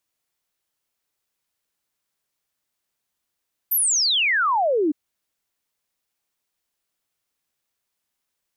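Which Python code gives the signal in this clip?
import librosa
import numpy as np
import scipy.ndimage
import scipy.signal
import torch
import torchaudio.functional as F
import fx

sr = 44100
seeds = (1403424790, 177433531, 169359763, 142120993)

y = fx.ess(sr, length_s=1.21, from_hz=14000.0, to_hz=280.0, level_db=-17.0)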